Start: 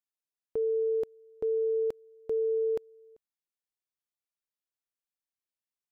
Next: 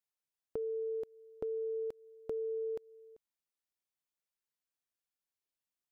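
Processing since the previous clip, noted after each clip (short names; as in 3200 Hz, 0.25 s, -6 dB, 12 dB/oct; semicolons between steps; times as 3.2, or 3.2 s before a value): compressor 6:1, threshold -35 dBFS, peak gain reduction 8 dB; gain -1 dB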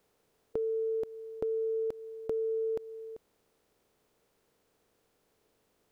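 per-bin compression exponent 0.6; gain +4.5 dB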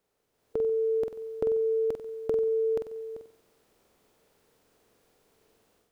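AGC gain up to 11.5 dB; on a send: flutter echo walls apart 8 m, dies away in 0.44 s; on the sum: gain -6.5 dB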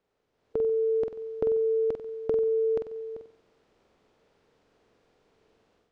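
air absorption 130 m; gain +1.5 dB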